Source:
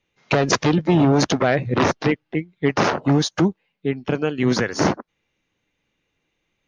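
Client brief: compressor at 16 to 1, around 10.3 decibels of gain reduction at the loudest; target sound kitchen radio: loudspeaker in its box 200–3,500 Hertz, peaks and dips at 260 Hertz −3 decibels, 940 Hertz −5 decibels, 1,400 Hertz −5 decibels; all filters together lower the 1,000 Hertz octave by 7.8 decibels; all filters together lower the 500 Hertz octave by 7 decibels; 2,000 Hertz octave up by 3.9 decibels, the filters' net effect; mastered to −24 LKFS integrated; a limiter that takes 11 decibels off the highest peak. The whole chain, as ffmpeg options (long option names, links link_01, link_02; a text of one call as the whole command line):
ffmpeg -i in.wav -af "equalizer=frequency=500:width_type=o:gain=-7.5,equalizer=frequency=1000:width_type=o:gain=-6,equalizer=frequency=2000:width_type=o:gain=8.5,acompressor=threshold=-23dB:ratio=16,alimiter=limit=-21dB:level=0:latency=1,highpass=200,equalizer=frequency=260:width_type=q:width=4:gain=-3,equalizer=frequency=940:width_type=q:width=4:gain=-5,equalizer=frequency=1400:width_type=q:width=4:gain=-5,lowpass=frequency=3500:width=0.5412,lowpass=frequency=3500:width=1.3066,volume=11.5dB" out.wav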